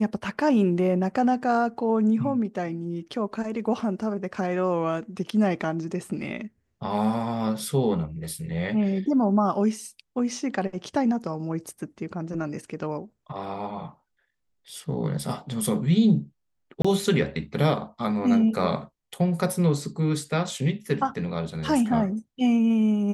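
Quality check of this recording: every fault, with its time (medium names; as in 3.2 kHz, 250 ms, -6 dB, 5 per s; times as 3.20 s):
16.82–16.84 s: dropout 25 ms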